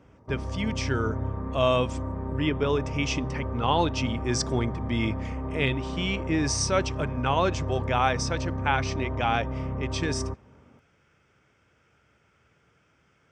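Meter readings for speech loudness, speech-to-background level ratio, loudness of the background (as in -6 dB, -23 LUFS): -28.5 LUFS, 4.5 dB, -33.0 LUFS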